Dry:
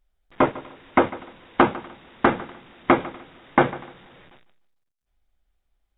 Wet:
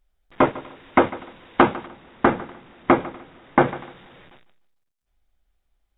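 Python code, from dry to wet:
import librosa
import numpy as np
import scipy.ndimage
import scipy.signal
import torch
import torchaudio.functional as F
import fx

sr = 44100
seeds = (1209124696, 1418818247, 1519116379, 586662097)

y = fx.high_shelf(x, sr, hz=2700.0, db=-8.0, at=(1.86, 3.68))
y = y * 10.0 ** (1.5 / 20.0)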